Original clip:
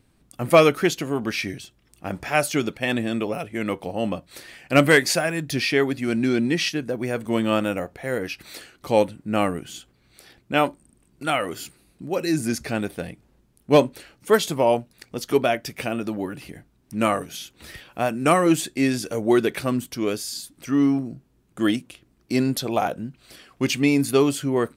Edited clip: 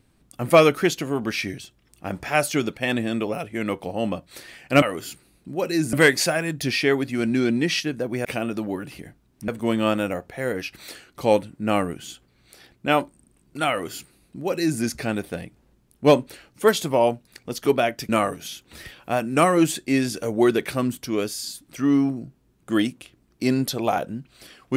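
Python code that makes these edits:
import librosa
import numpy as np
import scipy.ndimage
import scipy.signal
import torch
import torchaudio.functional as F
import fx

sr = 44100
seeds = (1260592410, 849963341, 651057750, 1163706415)

y = fx.edit(x, sr, fx.duplicate(start_s=11.36, length_s=1.11, to_s=4.82),
    fx.move(start_s=15.75, length_s=1.23, to_s=7.14), tone=tone)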